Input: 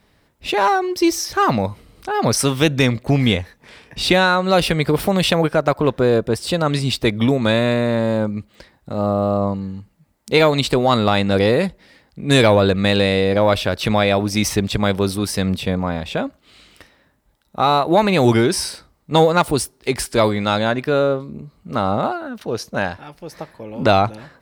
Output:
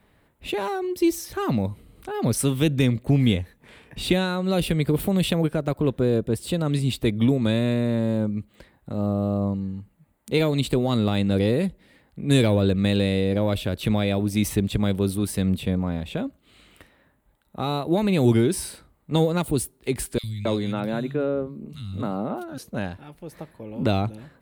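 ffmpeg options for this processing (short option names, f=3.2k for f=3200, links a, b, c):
-filter_complex "[0:a]asettb=1/sr,asplit=3[a][b][c];[a]atrim=end=20.184[d];[b]atrim=start=20.18:end=22.58,asetpts=PTS-STARTPTS,afade=t=in:d=0.004:c=qsin,afade=t=out:st=2.396:d=0.004:c=qsin,acrossover=split=150|2800[e][f][g];[e]adelay=50[h];[f]adelay=270[i];[h][i][g]amix=inputs=3:normalize=0,atrim=end_sample=105840[j];[c]atrim=start=22.576[k];[d][j]acrossfade=d=0.004:c1=hsin:c2=qsin[l];[l][k]acrossfade=d=0.004:c1=qsin:c2=hsin,equalizer=f=5.3k:t=o:w=0.73:g=-13.5,acrossover=split=420|3000[m][n][o];[n]acompressor=threshold=-54dB:ratio=1.5[p];[m][p][o]amix=inputs=3:normalize=0,volume=-2dB"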